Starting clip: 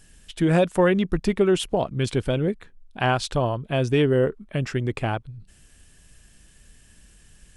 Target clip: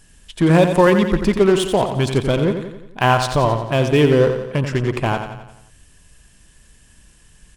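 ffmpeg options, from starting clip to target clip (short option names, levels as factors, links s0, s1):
-filter_complex "[0:a]asplit=2[s0][s1];[s1]acrusher=bits=3:mix=0:aa=0.5,volume=0.447[s2];[s0][s2]amix=inputs=2:normalize=0,equalizer=f=1000:t=o:w=0.24:g=7,aecho=1:1:88|176|264|352|440|528:0.398|0.207|0.108|0.056|0.0291|0.0151,volume=1.26"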